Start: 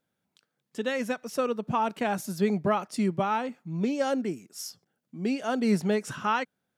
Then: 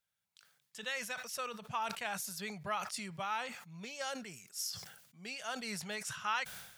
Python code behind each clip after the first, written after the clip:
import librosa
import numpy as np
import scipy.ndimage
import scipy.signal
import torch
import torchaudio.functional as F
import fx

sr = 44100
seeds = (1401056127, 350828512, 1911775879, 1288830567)

y = fx.tone_stack(x, sr, knobs='10-0-10')
y = fx.sustainer(y, sr, db_per_s=67.0)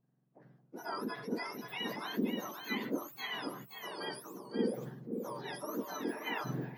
y = fx.octave_mirror(x, sr, pivot_hz=1600.0)
y = y + 10.0 ** (-6.5 / 20.0) * np.pad(y, (int(528 * sr / 1000.0), 0))[:len(y)]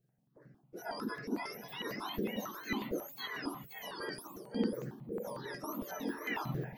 y = fx.comb_fb(x, sr, f0_hz=70.0, decay_s=0.17, harmonics='all', damping=0.0, mix_pct=50)
y = fx.phaser_held(y, sr, hz=11.0, low_hz=250.0, high_hz=3400.0)
y = y * librosa.db_to_amplitude(5.5)